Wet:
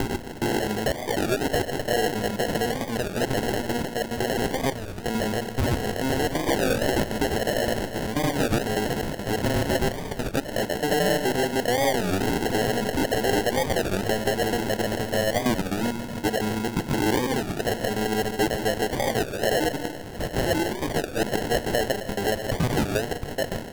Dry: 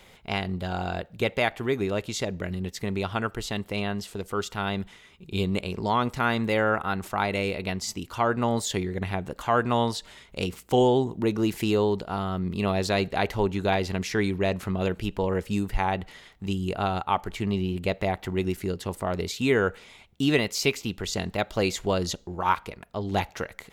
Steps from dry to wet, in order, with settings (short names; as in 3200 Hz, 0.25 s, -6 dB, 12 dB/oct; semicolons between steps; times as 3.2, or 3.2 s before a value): slices in reverse order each 86 ms, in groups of 5; notches 50/100/150/200/250/300 Hz; compressor 10:1, threshold -26 dBFS, peak gain reduction 10 dB; overdrive pedal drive 21 dB, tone 2500 Hz, clips at -12 dBFS; pitch shift +2.5 st; narrowing echo 0.162 s, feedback 69%, band-pass 1000 Hz, level -12.5 dB; digital reverb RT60 1.2 s, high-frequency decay 0.95×, pre-delay 50 ms, DRR 10.5 dB; sample-and-hold 37×; record warp 33 1/3 rpm, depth 250 cents